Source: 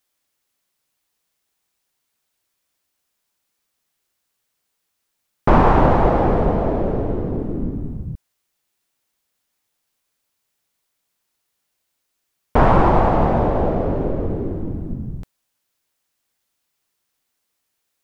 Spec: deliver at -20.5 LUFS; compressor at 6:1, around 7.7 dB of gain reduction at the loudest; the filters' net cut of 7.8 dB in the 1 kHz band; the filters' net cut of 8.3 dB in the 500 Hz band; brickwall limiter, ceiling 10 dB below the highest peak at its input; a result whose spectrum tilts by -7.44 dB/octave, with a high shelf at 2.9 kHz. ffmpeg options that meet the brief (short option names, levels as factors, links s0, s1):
-af "equalizer=f=500:t=o:g=-9,equalizer=f=1000:t=o:g=-6,highshelf=f=2900:g=-5.5,acompressor=threshold=0.112:ratio=6,volume=2.82,alimiter=limit=0.355:level=0:latency=1"